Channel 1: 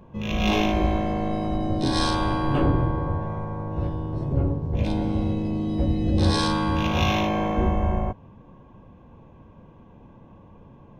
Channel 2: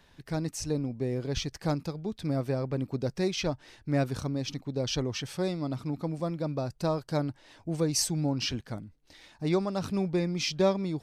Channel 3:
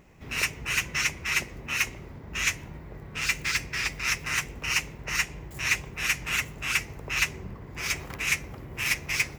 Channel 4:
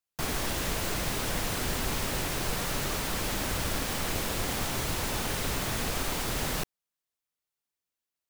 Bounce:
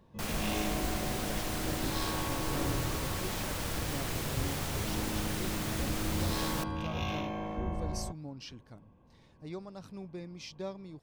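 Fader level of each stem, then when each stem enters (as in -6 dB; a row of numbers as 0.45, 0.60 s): -13.0 dB, -15.0 dB, off, -5.5 dB; 0.00 s, 0.00 s, off, 0.00 s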